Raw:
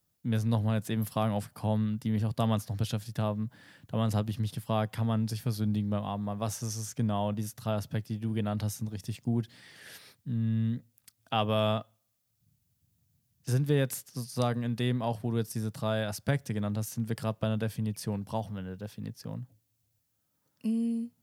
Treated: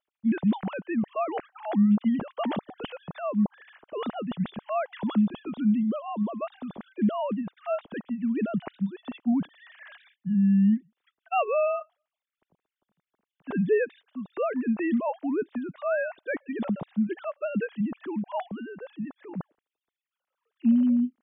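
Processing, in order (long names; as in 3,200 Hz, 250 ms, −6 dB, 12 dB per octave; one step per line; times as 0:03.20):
three sine waves on the formant tracks
level +3.5 dB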